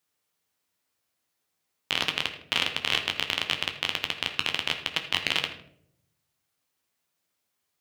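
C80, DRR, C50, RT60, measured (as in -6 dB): 11.5 dB, 4.0 dB, 9.0 dB, 0.70 s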